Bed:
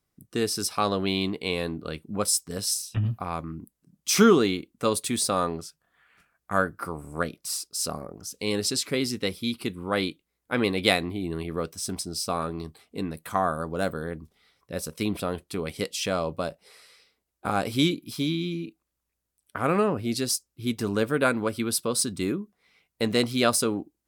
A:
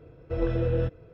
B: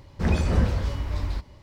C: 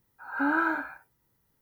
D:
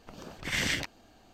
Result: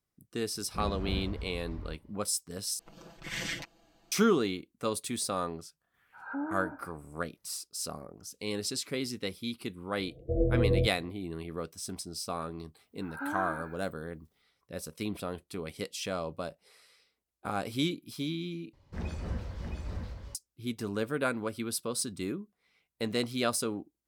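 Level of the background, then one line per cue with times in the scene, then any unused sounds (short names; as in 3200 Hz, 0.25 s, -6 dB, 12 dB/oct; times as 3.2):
bed -7.5 dB
0.55 add B -13.5 dB + LPF 1500 Hz 6 dB/oct
2.79 replace with D -8.5 dB + comb 6 ms, depth 84%
5.94 add C -6.5 dB + treble ducked by the level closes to 720 Hz, closed at -27.5 dBFS
9.98 add A -0.5 dB + steep low-pass 730 Hz 96 dB/oct
12.81 add C -9.5 dB
18.73 replace with B -14.5 dB + echo 0.666 s -4.5 dB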